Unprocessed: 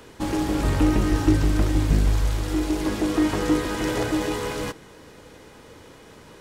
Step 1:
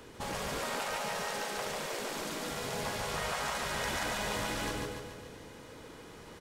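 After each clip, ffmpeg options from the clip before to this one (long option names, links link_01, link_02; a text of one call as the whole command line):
ffmpeg -i in.wav -af "aecho=1:1:143|286|429|572|715|858|1001:0.708|0.375|0.199|0.105|0.0559|0.0296|0.0157,afftfilt=real='re*lt(hypot(re,im),0.2)':imag='im*lt(hypot(re,im),0.2)':win_size=1024:overlap=0.75,volume=-5dB" out.wav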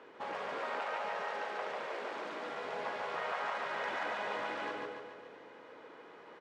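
ffmpeg -i in.wav -af "highpass=420,lowpass=2100" out.wav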